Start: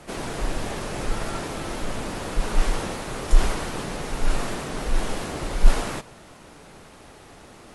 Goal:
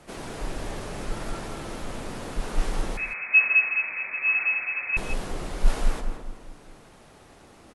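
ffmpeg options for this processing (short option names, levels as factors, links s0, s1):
-filter_complex "[0:a]asplit=2[s0][s1];[s1]adelay=209,lowpass=f=870:p=1,volume=0.631,asplit=2[s2][s3];[s3]adelay=209,lowpass=f=870:p=1,volume=0.43,asplit=2[s4][s5];[s5]adelay=209,lowpass=f=870:p=1,volume=0.43,asplit=2[s6][s7];[s7]adelay=209,lowpass=f=870:p=1,volume=0.43,asplit=2[s8][s9];[s9]adelay=209,lowpass=f=870:p=1,volume=0.43[s10];[s2][s4][s6][s8][s10]amix=inputs=5:normalize=0[s11];[s0][s11]amix=inputs=2:normalize=0,asettb=1/sr,asplit=3[s12][s13][s14];[s12]atrim=end=2.974[s15];[s13]atrim=start=2.97:end=4.97,asetpts=PTS-STARTPTS,afade=t=in:d=0.004:c=qsin,afade=t=out:st=1.996:d=0.004:c=qsin,lowpass=f=2200:t=q:w=0.5098,lowpass=f=2200:t=q:w=0.6013,lowpass=f=2200:t=q:w=0.9,lowpass=f=2200:t=q:w=2.563,afreqshift=-2600[s16];[s14]atrim=start=4.966[s17];[s15][s16]acrossfade=d=0.004:c1=hsin:c2=qsin[s18];[s18][s17]acrossfade=d=0.004:c1=qsin:c2=hsin,asplit=2[s19][s20];[s20]aecho=0:1:165:0.237[s21];[s19][s21]amix=inputs=2:normalize=0,volume=0.501"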